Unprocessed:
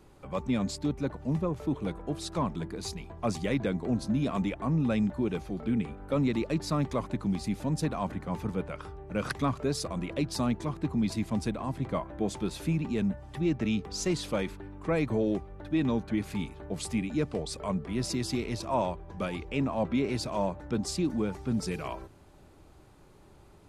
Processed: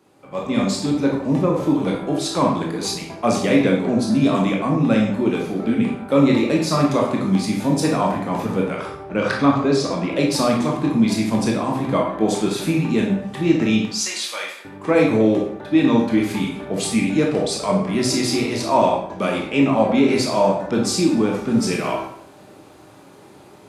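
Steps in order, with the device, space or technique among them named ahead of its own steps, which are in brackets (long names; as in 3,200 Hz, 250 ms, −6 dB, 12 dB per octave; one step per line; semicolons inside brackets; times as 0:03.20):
0:09.03–0:10.10: high-frequency loss of the air 86 metres
0:13.85–0:14.65: Bessel high-pass filter 1,700 Hz, order 2
far laptop microphone (convolution reverb RT60 0.70 s, pre-delay 17 ms, DRR −1 dB; high-pass filter 190 Hz 12 dB per octave; automatic gain control gain up to 10.5 dB)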